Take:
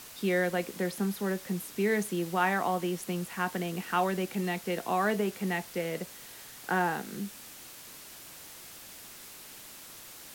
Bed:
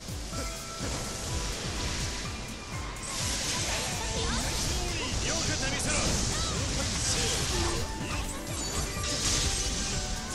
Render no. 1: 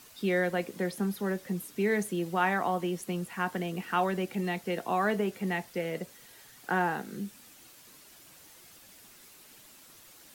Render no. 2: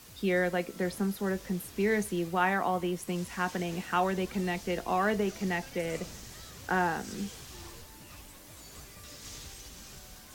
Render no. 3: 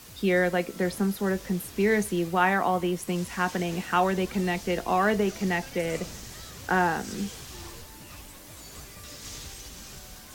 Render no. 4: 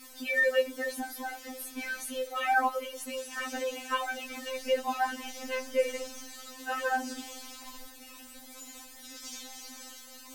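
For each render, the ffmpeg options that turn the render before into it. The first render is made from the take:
-af "afftdn=nr=8:nf=-48"
-filter_complex "[1:a]volume=0.126[s0];[0:a][s0]amix=inputs=2:normalize=0"
-af "volume=1.68"
-af "afftfilt=real='re*3.46*eq(mod(b,12),0)':imag='im*3.46*eq(mod(b,12),0)':win_size=2048:overlap=0.75"

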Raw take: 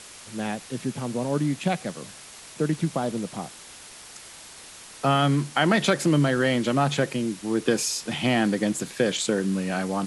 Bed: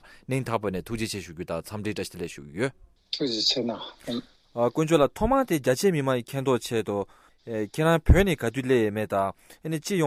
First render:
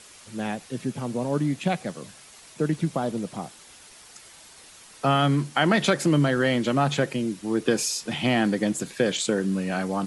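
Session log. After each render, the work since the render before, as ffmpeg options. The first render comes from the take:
-af "afftdn=nr=6:nf=-45"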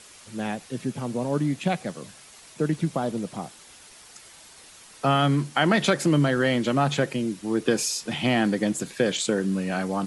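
-af anull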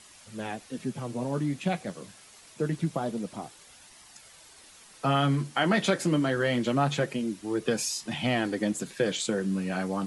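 -af "flanger=delay=1:depth=9.7:regen=-46:speed=0.25:shape=sinusoidal"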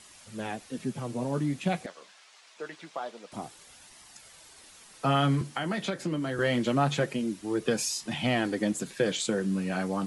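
-filter_complex "[0:a]asettb=1/sr,asplit=3[s0][s1][s2];[s0]atrim=end=1.864[s3];[s1]atrim=start=1.86:end=3.32,asetpts=PTS-STARTPTS,afade=t=in:d=0.004:c=qsin,afade=t=out:st=1.456:d=0.004:c=qsin,highpass=720,lowpass=5300[s4];[s2]atrim=start=3.316[s5];[s3][s4]acrossfade=d=0.004:c1=hsin:c2=qsin[s6];[s6][s5]acrossfade=d=0.004:c1=qsin:c2=hsin,asettb=1/sr,asplit=3[s7][s8][s9];[s7]atrim=end=5.414[s10];[s8]atrim=start=5.41:end=6.39,asetpts=PTS-STARTPTS,afade=t=in:d=0.004:c=qsin,afade=t=out:st=0.976:d=0.004:c=qsin,acrossover=split=210|6000[s11][s12][s13];[s11]acompressor=threshold=0.0158:ratio=4[s14];[s12]acompressor=threshold=0.0282:ratio=4[s15];[s13]acompressor=threshold=0.00224:ratio=4[s16];[s14][s15][s16]amix=inputs=3:normalize=0[s17];[s9]atrim=start=6.386[s18];[s10][s17]acrossfade=d=0.004:c1=hsin:c2=qsin[s19];[s19][s18]acrossfade=d=0.004:c1=qsin:c2=hsin"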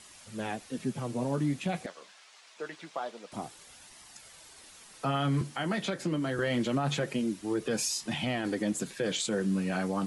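-af "alimiter=limit=0.0891:level=0:latency=1:release=36"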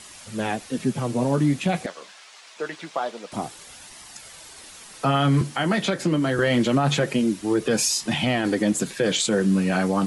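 -af "volume=2.82"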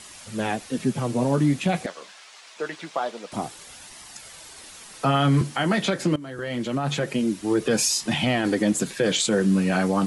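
-filter_complex "[0:a]asplit=2[s0][s1];[s0]atrim=end=6.16,asetpts=PTS-STARTPTS,afade=t=out:st=6.156:d=0.004:c=hsin:silence=0.141254[s2];[s1]atrim=start=6.16,asetpts=PTS-STARTPTS,afade=t=in:d=1.42:silence=0.141254[s3];[s2][s3]concat=n=2:v=0:a=1"

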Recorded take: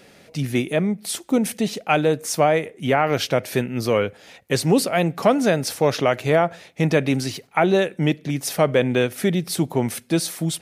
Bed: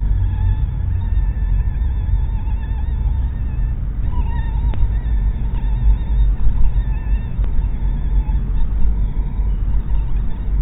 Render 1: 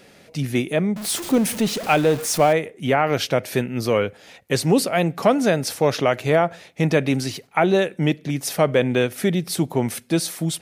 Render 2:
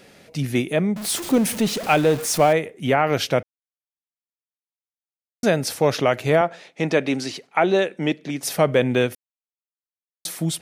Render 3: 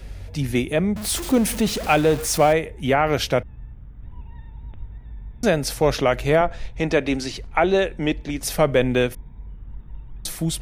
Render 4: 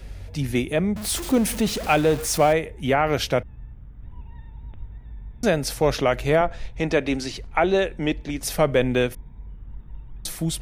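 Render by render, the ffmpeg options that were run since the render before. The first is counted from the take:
-filter_complex "[0:a]asettb=1/sr,asplit=3[s0][s1][s2];[s0]atrim=end=0.964[s3];[s1]atrim=start=0.96:end=2.53,asetpts=PTS-STARTPTS,afade=t=in:d=0.004:c=qsin,afade=t=out:st=1.566:d=0.004:c=qsin,aeval=exprs='val(0)+0.5*0.0473*sgn(val(0))':c=same[s4];[s2]atrim=start=2.526[s5];[s3][s4]acrossfade=d=0.004:c1=hsin:c2=qsin[s6];[s6][s5]acrossfade=d=0.004:c1=qsin:c2=hsin"
-filter_complex "[0:a]asettb=1/sr,asplit=3[s0][s1][s2];[s0]atrim=end=6.414[s3];[s1]atrim=start=6.41:end=8.43,asetpts=PTS-STARTPTS,afade=t=in:d=0.004:c=qsin,afade=t=out:st=2.016:d=0.004:c=qsin,highpass=230,lowpass=7600[s4];[s2]atrim=start=8.426[s5];[s3][s4]acrossfade=d=0.004:c1=hsin:c2=qsin[s6];[s6][s5]acrossfade=d=0.004:c1=qsin:c2=hsin,asplit=5[s7][s8][s9][s10][s11];[s7]atrim=end=3.43,asetpts=PTS-STARTPTS,afade=t=out:st=3.426:d=0.004:c=hsin[s12];[s8]atrim=start=3.43:end=5.43,asetpts=PTS-STARTPTS,volume=0[s13];[s9]atrim=start=5.43:end=9.15,asetpts=PTS-STARTPTS,afade=t=in:d=0.004:c=hsin,afade=t=out:st=3.716:d=0.004:c=hsin[s14];[s10]atrim=start=9.15:end=10.25,asetpts=PTS-STARTPTS,volume=0[s15];[s11]atrim=start=10.25,asetpts=PTS-STARTPTS,afade=t=in:d=0.004:c=hsin[s16];[s12][s13][s14][s15][s16]concat=n=5:v=0:a=1"
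-filter_complex "[1:a]volume=0.112[s0];[0:a][s0]amix=inputs=2:normalize=0"
-af "volume=0.841"

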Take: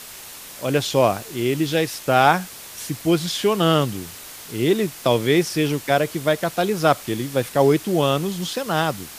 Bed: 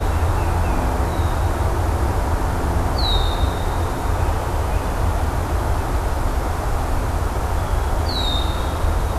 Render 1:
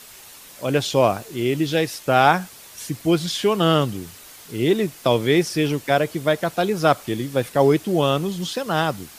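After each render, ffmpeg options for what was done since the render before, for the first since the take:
-af "afftdn=nr=6:nf=-39"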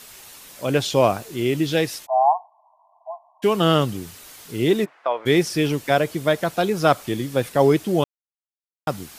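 -filter_complex "[0:a]asplit=3[s0][s1][s2];[s0]afade=t=out:st=2.05:d=0.02[s3];[s1]asuperpass=centerf=830:order=20:qfactor=1.8,afade=t=in:st=2.05:d=0.02,afade=t=out:st=3.42:d=0.02[s4];[s2]afade=t=in:st=3.42:d=0.02[s5];[s3][s4][s5]amix=inputs=3:normalize=0,asplit=3[s6][s7][s8];[s6]afade=t=out:st=4.84:d=0.02[s9];[s7]asuperpass=centerf=1100:order=4:qfactor=0.88,afade=t=in:st=4.84:d=0.02,afade=t=out:st=5.25:d=0.02[s10];[s8]afade=t=in:st=5.25:d=0.02[s11];[s9][s10][s11]amix=inputs=3:normalize=0,asplit=3[s12][s13][s14];[s12]atrim=end=8.04,asetpts=PTS-STARTPTS,afade=t=out:st=8.036:d=0.004:c=hsin[s15];[s13]atrim=start=8.04:end=8.87,asetpts=PTS-STARTPTS,volume=0[s16];[s14]atrim=start=8.87,asetpts=PTS-STARTPTS,afade=t=in:d=0.004:c=hsin[s17];[s15][s16][s17]concat=n=3:v=0:a=1"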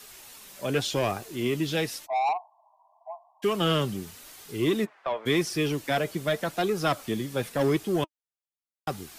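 -filter_complex "[0:a]flanger=delay=2.4:depth=2.8:regen=60:speed=0.89:shape=sinusoidal,acrossover=split=290|1400|1800[s0][s1][s2][s3];[s1]asoftclip=type=tanh:threshold=0.0596[s4];[s0][s4][s2][s3]amix=inputs=4:normalize=0"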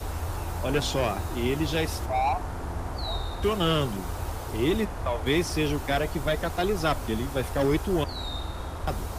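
-filter_complex "[1:a]volume=0.224[s0];[0:a][s0]amix=inputs=2:normalize=0"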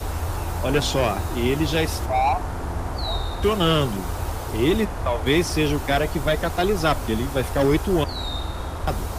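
-af "volume=1.78"

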